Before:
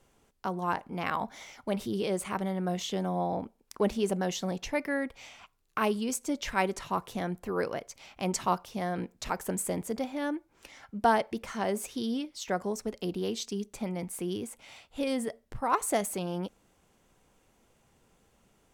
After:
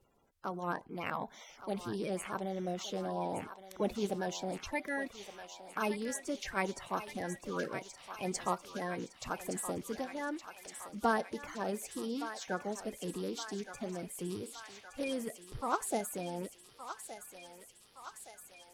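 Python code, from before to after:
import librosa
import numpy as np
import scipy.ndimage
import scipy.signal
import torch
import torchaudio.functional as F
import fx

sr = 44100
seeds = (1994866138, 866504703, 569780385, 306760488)

p1 = fx.spec_quant(x, sr, step_db=30)
p2 = p1 + fx.echo_thinned(p1, sr, ms=1168, feedback_pct=76, hz=880.0, wet_db=-8.5, dry=0)
y = p2 * 10.0 ** (-5.5 / 20.0)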